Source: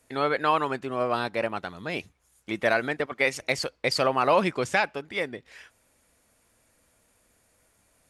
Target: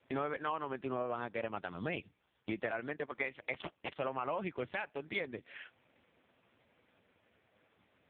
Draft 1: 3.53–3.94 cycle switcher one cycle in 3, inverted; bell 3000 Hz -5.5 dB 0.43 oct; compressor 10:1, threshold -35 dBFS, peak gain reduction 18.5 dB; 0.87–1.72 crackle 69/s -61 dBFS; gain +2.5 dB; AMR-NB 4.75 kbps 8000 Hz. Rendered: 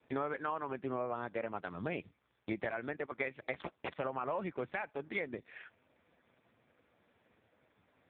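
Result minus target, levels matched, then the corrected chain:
4000 Hz band -5.0 dB
3.53–3.94 cycle switcher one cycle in 3, inverted; bell 3000 Hz +2.5 dB 0.43 oct; compressor 10:1, threshold -35 dBFS, peak gain reduction 19 dB; 0.87–1.72 crackle 69/s -61 dBFS; gain +2.5 dB; AMR-NB 4.75 kbps 8000 Hz

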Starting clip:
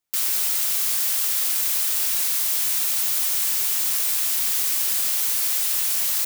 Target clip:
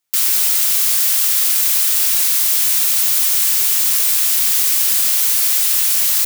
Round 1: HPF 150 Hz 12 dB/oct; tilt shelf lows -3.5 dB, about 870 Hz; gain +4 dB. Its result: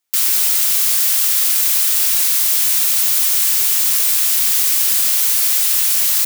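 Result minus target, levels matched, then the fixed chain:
125 Hz band -4.0 dB
HPF 44 Hz 12 dB/oct; tilt shelf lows -3.5 dB, about 870 Hz; gain +4 dB

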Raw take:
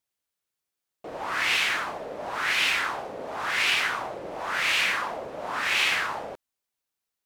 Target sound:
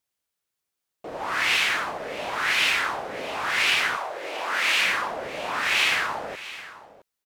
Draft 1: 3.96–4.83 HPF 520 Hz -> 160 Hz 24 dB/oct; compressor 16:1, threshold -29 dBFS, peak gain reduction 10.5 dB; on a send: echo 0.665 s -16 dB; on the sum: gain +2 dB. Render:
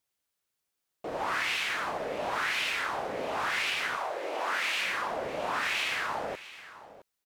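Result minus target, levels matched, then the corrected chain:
compressor: peak gain reduction +10.5 dB
3.96–4.83 HPF 520 Hz -> 160 Hz 24 dB/oct; on a send: echo 0.665 s -16 dB; on the sum: gain +2 dB

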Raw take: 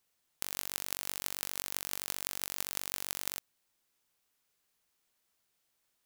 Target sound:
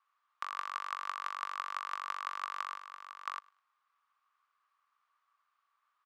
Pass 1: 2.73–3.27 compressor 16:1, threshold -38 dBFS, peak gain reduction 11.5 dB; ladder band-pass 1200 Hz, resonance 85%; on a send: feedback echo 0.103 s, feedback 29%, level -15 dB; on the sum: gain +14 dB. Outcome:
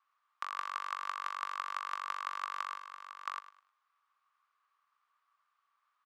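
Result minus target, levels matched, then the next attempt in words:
echo-to-direct +11 dB
2.73–3.27 compressor 16:1, threshold -38 dBFS, peak gain reduction 11.5 dB; ladder band-pass 1200 Hz, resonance 85%; on a send: feedback echo 0.103 s, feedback 29%, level -26 dB; on the sum: gain +14 dB

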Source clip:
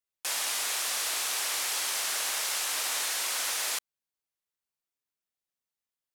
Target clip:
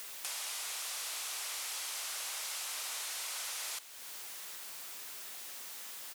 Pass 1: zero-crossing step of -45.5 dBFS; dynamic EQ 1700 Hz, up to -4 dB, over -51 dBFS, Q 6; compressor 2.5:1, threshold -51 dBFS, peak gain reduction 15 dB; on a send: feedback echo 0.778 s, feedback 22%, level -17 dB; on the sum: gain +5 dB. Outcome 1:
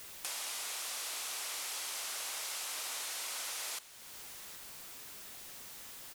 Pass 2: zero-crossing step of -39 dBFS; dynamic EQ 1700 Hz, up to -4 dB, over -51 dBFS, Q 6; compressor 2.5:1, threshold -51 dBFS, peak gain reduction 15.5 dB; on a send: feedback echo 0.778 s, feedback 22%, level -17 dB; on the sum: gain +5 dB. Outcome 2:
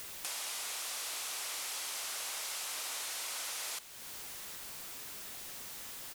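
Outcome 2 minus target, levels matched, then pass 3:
500 Hz band +3.0 dB
zero-crossing step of -39 dBFS; dynamic EQ 1700 Hz, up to -4 dB, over -51 dBFS, Q 6; compressor 2.5:1, threshold -51 dBFS, peak gain reduction 15.5 dB; HPF 590 Hz 6 dB/oct; on a send: feedback echo 0.778 s, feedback 22%, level -17 dB; on the sum: gain +5 dB

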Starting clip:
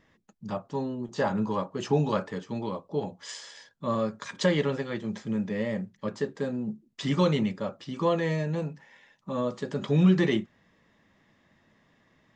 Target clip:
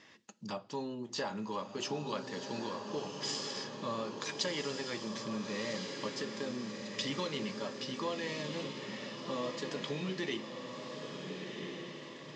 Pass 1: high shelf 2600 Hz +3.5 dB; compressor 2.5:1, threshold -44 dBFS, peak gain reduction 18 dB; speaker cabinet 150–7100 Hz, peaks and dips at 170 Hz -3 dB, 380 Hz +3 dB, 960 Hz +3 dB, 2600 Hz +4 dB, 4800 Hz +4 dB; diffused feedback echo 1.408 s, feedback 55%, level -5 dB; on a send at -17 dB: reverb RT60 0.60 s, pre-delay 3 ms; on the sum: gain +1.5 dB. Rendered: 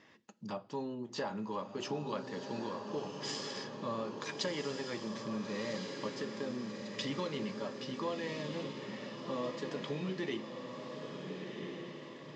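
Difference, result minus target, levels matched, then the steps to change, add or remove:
4000 Hz band -3.0 dB
change: high shelf 2600 Hz +13 dB

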